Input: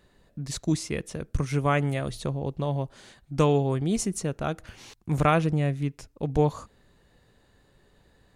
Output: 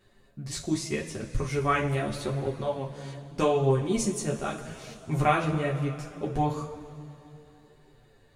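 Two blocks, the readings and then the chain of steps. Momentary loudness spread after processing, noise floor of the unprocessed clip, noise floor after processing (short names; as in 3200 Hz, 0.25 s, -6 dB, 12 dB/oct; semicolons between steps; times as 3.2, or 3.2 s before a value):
16 LU, -63 dBFS, -59 dBFS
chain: two-slope reverb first 0.23 s, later 3.1 s, from -18 dB, DRR -0.5 dB; chorus voices 2, 0.81 Hz, delay 11 ms, depth 3.6 ms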